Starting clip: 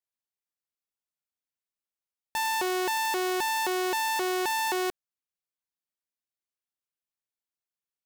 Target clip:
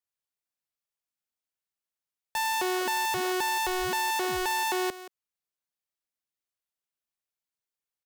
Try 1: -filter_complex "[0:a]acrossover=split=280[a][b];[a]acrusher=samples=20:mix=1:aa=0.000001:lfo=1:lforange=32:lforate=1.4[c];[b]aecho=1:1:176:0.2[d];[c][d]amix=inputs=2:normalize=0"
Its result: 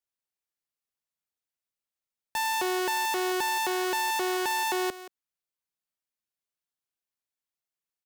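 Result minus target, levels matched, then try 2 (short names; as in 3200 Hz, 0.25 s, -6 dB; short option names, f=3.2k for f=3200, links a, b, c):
decimation with a swept rate: distortion -13 dB
-filter_complex "[0:a]acrossover=split=280[a][b];[a]acrusher=samples=66:mix=1:aa=0.000001:lfo=1:lforange=106:lforate=1.4[c];[b]aecho=1:1:176:0.2[d];[c][d]amix=inputs=2:normalize=0"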